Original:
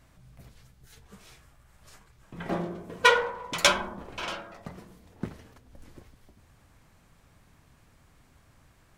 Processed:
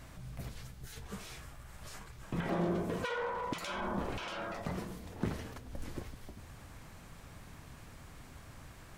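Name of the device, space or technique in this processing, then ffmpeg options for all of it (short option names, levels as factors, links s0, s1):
de-esser from a sidechain: -filter_complex "[0:a]asplit=2[s0][s1];[s1]highpass=f=5400:p=1,apad=whole_len=395953[s2];[s0][s2]sidechaincompress=threshold=0.00112:ratio=5:attack=3:release=20,volume=2.51"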